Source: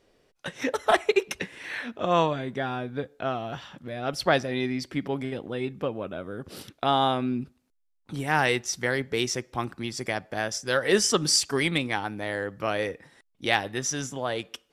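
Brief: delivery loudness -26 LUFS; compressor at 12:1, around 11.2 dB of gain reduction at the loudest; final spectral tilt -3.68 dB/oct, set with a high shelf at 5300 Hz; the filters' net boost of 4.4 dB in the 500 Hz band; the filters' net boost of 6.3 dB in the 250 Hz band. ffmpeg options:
-af "equalizer=f=250:t=o:g=6.5,equalizer=f=500:t=o:g=3.5,highshelf=f=5.3k:g=8,acompressor=threshold=-23dB:ratio=12,volume=3.5dB"

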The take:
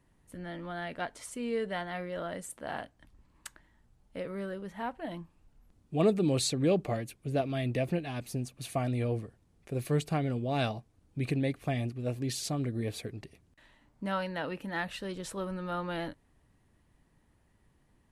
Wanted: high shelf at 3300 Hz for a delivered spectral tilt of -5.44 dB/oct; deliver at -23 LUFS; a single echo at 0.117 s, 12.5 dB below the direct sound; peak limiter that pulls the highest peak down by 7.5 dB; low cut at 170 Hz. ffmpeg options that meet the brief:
-af "highpass=170,highshelf=f=3.3k:g=-7.5,alimiter=limit=-22dB:level=0:latency=1,aecho=1:1:117:0.237,volume=13.5dB"

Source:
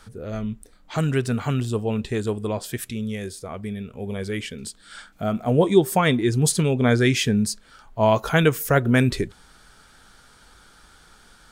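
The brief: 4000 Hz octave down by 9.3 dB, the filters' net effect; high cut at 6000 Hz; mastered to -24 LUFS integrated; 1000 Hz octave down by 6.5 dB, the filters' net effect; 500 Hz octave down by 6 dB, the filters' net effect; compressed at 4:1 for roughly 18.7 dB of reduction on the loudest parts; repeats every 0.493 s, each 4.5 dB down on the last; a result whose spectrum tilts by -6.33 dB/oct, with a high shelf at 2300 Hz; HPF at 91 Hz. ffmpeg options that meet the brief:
-af "highpass=91,lowpass=6k,equalizer=f=500:t=o:g=-6.5,equalizer=f=1k:t=o:g=-5,highshelf=f=2.3k:g=-4.5,equalizer=f=4k:t=o:g=-7,acompressor=threshold=-37dB:ratio=4,aecho=1:1:493|986|1479|1972|2465|2958|3451|3944|4437:0.596|0.357|0.214|0.129|0.0772|0.0463|0.0278|0.0167|0.01,volume=14dB"

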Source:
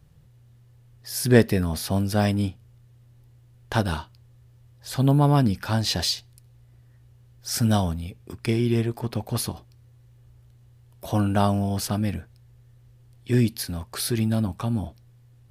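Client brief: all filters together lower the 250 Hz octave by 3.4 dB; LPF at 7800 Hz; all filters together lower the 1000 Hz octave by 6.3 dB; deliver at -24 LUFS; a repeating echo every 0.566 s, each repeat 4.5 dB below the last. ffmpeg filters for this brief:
-af "lowpass=7.8k,equalizer=f=250:t=o:g=-4,equalizer=f=1k:t=o:g=-9,aecho=1:1:566|1132|1698|2264|2830|3396|3962|4528|5094:0.596|0.357|0.214|0.129|0.0772|0.0463|0.0278|0.0167|0.01,volume=2.5dB"

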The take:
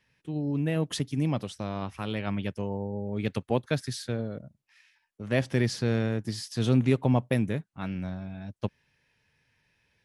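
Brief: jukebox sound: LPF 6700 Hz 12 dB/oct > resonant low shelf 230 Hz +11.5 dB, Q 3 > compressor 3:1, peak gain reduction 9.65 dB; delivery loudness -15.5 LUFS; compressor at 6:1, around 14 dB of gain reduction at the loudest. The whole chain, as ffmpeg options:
-af "acompressor=threshold=-33dB:ratio=6,lowpass=6.7k,lowshelf=f=230:t=q:w=3:g=11.5,acompressor=threshold=-29dB:ratio=3,volume=16.5dB"

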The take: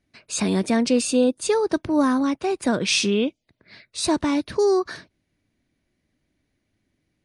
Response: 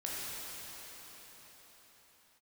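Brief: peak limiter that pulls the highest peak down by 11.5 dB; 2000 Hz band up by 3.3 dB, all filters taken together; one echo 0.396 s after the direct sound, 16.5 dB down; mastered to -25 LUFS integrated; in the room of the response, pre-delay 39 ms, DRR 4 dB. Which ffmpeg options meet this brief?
-filter_complex "[0:a]equalizer=f=2k:t=o:g=4.5,alimiter=limit=-17.5dB:level=0:latency=1,aecho=1:1:396:0.15,asplit=2[a][b];[1:a]atrim=start_sample=2205,adelay=39[c];[b][c]afir=irnorm=-1:irlink=0,volume=-8dB[d];[a][d]amix=inputs=2:normalize=0"

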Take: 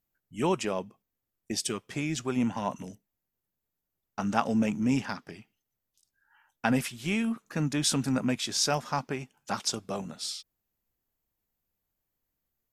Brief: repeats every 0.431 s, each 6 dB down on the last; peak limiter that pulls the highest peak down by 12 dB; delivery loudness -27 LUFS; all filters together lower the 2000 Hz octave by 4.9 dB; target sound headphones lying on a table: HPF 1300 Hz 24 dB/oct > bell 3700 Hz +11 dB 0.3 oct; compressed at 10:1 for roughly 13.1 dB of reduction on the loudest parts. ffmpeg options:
-af "equalizer=f=2k:t=o:g=-7,acompressor=threshold=-35dB:ratio=10,alimiter=level_in=5.5dB:limit=-24dB:level=0:latency=1,volume=-5.5dB,highpass=f=1.3k:w=0.5412,highpass=f=1.3k:w=1.3066,equalizer=f=3.7k:t=o:w=0.3:g=11,aecho=1:1:431|862|1293|1724|2155|2586:0.501|0.251|0.125|0.0626|0.0313|0.0157,volume=16.5dB"

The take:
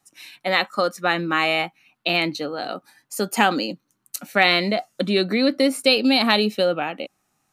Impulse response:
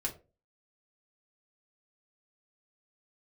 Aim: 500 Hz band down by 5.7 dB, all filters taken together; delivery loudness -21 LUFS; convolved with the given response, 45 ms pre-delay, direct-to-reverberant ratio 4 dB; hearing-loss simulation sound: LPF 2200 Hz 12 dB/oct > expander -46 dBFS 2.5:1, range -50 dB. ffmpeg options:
-filter_complex "[0:a]equalizer=f=500:t=o:g=-7,asplit=2[a][b];[1:a]atrim=start_sample=2205,adelay=45[c];[b][c]afir=irnorm=-1:irlink=0,volume=-6dB[d];[a][d]amix=inputs=2:normalize=0,lowpass=2.2k,agate=range=-50dB:threshold=-46dB:ratio=2.5,volume=2dB"

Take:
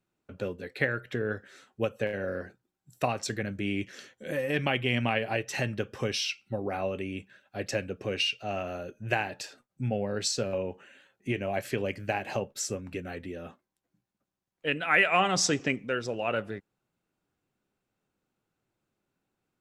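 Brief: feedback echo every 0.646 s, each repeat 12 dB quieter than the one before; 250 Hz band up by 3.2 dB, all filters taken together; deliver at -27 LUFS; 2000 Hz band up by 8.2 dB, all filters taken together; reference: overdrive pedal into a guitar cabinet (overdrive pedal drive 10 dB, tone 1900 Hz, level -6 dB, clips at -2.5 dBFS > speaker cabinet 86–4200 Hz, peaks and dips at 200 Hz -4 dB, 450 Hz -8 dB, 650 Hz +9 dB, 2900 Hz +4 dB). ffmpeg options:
-filter_complex "[0:a]equalizer=f=250:t=o:g=6,equalizer=f=2k:t=o:g=9,aecho=1:1:646|1292|1938:0.251|0.0628|0.0157,asplit=2[a][b];[b]highpass=f=720:p=1,volume=10dB,asoftclip=type=tanh:threshold=-2.5dB[c];[a][c]amix=inputs=2:normalize=0,lowpass=f=1.9k:p=1,volume=-6dB,highpass=86,equalizer=f=200:t=q:w=4:g=-4,equalizer=f=450:t=q:w=4:g=-8,equalizer=f=650:t=q:w=4:g=9,equalizer=f=2.9k:t=q:w=4:g=4,lowpass=f=4.2k:w=0.5412,lowpass=f=4.2k:w=1.3066,volume=-3.5dB"

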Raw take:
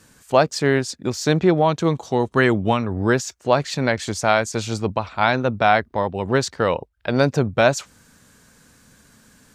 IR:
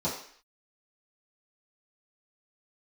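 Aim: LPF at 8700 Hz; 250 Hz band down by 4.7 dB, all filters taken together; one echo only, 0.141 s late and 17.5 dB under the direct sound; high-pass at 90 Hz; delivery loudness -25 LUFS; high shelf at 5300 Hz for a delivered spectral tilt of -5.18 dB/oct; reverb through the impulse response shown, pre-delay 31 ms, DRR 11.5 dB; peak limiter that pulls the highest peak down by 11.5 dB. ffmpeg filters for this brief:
-filter_complex "[0:a]highpass=90,lowpass=8.7k,equalizer=f=250:t=o:g=-6.5,highshelf=f=5.3k:g=-4,alimiter=limit=-13.5dB:level=0:latency=1,aecho=1:1:141:0.133,asplit=2[a][b];[1:a]atrim=start_sample=2205,adelay=31[c];[b][c]afir=irnorm=-1:irlink=0,volume=-19.5dB[d];[a][d]amix=inputs=2:normalize=0,volume=1dB"

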